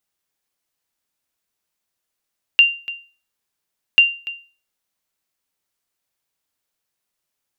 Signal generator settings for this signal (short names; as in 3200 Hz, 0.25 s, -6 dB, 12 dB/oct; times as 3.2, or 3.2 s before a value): sonar ping 2780 Hz, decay 0.36 s, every 1.39 s, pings 2, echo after 0.29 s, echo -17.5 dB -3.5 dBFS